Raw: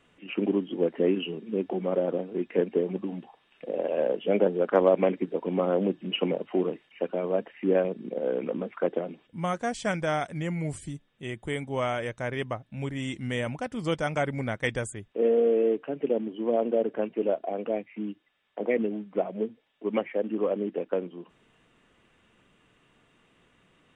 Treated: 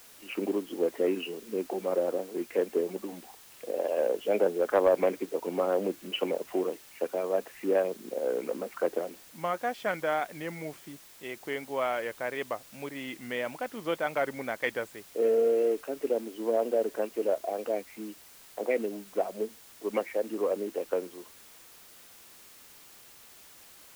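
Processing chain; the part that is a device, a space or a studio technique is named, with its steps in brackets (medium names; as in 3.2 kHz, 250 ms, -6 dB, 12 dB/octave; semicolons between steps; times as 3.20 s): tape answering machine (band-pass 360–2900 Hz; saturation -11.5 dBFS, distortion -25 dB; wow and flutter; white noise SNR 22 dB)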